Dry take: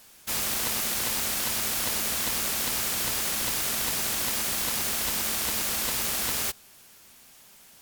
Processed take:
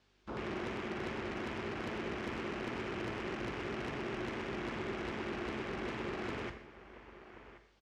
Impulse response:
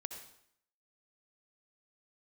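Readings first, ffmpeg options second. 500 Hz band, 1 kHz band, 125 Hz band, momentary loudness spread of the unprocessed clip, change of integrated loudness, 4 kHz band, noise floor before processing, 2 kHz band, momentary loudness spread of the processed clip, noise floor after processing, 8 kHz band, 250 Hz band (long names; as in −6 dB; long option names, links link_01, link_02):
+0.5 dB, −6.5 dB, −2.0 dB, 1 LU, −14.5 dB, −19.0 dB, −53 dBFS, −8.5 dB, 15 LU, −67 dBFS, −35.0 dB, +0.5 dB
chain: -filter_complex "[0:a]acrossover=split=2600[link_01][link_02];[link_02]acompressor=threshold=-40dB:ratio=4:attack=1:release=60[link_03];[link_01][link_03]amix=inputs=2:normalize=0,aeval=exprs='val(0)+0.00158*(sin(2*PI*50*n/s)+sin(2*PI*2*50*n/s)/2+sin(2*PI*3*50*n/s)/3+sin(2*PI*4*50*n/s)/4+sin(2*PI*5*50*n/s)/5)':channel_layout=same,lowshelf=frequency=110:gain=-5,afwtdn=0.0126,acrossover=split=4900[link_04][link_05];[link_05]acrusher=bits=3:dc=4:mix=0:aa=0.000001[link_06];[link_04][link_06]amix=inputs=2:normalize=0,aecho=1:1:1081:0.0891,asoftclip=type=tanh:threshold=-33.5dB,acrossover=split=320|3000[link_07][link_08][link_09];[link_08]acompressor=threshold=-56dB:ratio=1.5[link_10];[link_07][link_10][link_09]amix=inputs=3:normalize=0,highpass=44,equalizer=frequency=370:width=3.4:gain=12,asplit=2[link_11][link_12];[link_12]adelay=43,volume=-11.5dB[link_13];[link_11][link_13]amix=inputs=2:normalize=0,asplit=2[link_14][link_15];[1:a]atrim=start_sample=2205[link_16];[link_15][link_16]afir=irnorm=-1:irlink=0,volume=4dB[link_17];[link_14][link_17]amix=inputs=2:normalize=0,volume=-4.5dB"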